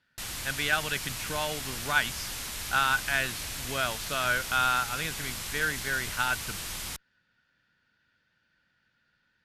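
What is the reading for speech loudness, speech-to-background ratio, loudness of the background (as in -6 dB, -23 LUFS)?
-29.5 LUFS, 5.5 dB, -35.0 LUFS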